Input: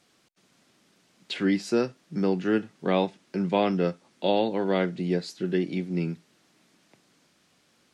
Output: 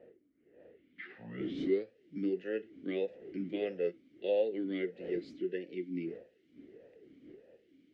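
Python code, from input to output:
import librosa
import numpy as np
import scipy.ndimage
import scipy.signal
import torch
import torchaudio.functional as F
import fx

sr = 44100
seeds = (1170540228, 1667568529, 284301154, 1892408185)

y = fx.tape_start_head(x, sr, length_s=2.15)
y = fx.dmg_wind(y, sr, seeds[0], corner_hz=370.0, level_db=-38.0)
y = fx.vowel_sweep(y, sr, vowels='e-i', hz=1.6)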